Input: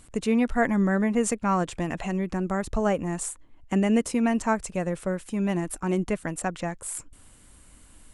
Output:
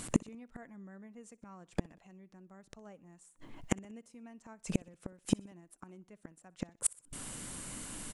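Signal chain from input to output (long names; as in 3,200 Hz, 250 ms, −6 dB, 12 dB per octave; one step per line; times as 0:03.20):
low shelf with overshoot 100 Hz −10 dB, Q 1.5
gate with flip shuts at −23 dBFS, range −40 dB
parametric band 6,000 Hz +3 dB 0.77 octaves
repeating echo 62 ms, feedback 51%, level −24 dB
level +10.5 dB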